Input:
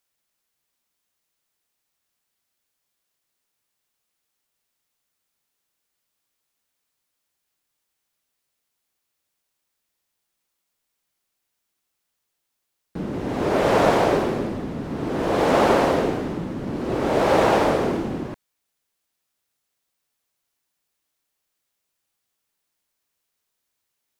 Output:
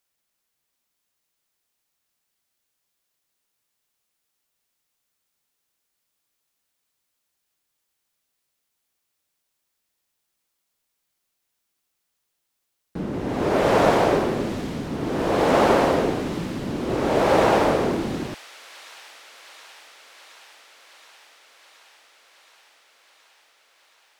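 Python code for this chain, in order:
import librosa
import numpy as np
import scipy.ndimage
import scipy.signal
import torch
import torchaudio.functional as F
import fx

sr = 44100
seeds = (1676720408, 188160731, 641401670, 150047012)

y = fx.echo_wet_highpass(x, sr, ms=722, feedback_pct=77, hz=2700.0, wet_db=-9.0)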